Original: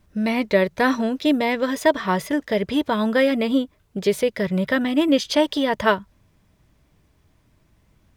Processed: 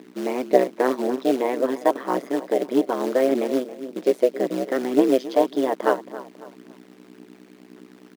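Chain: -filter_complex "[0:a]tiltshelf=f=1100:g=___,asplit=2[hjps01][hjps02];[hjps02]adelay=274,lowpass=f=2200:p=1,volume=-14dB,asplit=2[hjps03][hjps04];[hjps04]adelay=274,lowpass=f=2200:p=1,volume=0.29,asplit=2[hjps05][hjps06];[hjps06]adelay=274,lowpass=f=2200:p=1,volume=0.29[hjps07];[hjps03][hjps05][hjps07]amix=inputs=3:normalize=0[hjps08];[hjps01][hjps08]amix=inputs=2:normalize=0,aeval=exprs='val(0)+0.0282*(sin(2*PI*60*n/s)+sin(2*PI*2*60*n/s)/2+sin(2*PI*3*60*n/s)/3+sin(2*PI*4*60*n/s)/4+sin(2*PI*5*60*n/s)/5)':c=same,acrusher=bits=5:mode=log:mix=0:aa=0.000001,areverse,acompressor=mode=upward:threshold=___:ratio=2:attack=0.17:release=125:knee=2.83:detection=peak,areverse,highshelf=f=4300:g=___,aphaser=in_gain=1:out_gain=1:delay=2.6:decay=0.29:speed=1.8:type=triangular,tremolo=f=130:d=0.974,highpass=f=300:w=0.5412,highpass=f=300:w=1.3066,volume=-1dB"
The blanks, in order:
9, -19dB, -6.5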